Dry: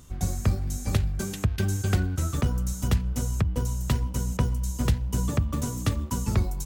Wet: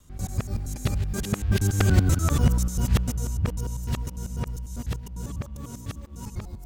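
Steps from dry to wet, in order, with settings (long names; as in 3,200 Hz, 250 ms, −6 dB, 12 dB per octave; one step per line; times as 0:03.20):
reversed piece by piece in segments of 97 ms
source passing by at 0:02.13, 9 m/s, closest 5.7 metres
level +6 dB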